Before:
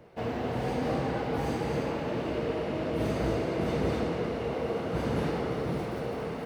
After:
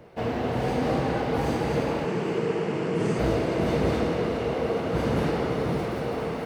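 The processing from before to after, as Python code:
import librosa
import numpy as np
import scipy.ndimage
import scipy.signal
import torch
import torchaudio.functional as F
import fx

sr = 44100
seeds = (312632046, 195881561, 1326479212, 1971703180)

y = fx.tracing_dist(x, sr, depth_ms=0.024)
y = fx.cabinet(y, sr, low_hz=120.0, low_slope=24, high_hz=9900.0, hz=(180.0, 270.0, 410.0, 600.0, 3800.0, 7600.0), db=(6, -7, 6, -10, -8, 6), at=(2.05, 3.19))
y = fx.echo_thinned(y, sr, ms=427, feedback_pct=49, hz=420.0, wet_db=-11)
y = F.gain(torch.from_numpy(y), 4.5).numpy()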